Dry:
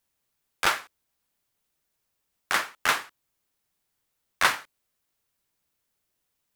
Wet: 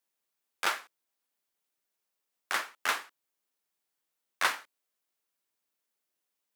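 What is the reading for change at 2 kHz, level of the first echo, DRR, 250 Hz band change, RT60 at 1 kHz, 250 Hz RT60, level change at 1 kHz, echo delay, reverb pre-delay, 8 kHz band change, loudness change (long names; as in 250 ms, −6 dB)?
−6.0 dB, no echo audible, no reverb audible, −8.5 dB, no reverb audible, no reverb audible, −6.0 dB, no echo audible, no reverb audible, −6.0 dB, −6.0 dB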